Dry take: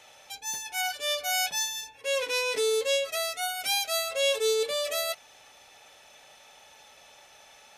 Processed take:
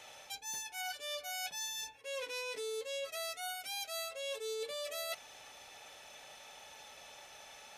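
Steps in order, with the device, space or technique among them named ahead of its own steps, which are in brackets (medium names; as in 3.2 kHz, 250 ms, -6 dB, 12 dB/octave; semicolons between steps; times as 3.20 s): compression on the reversed sound (reverse; compression 6:1, threshold -39 dBFS, peak gain reduction 16.5 dB; reverse)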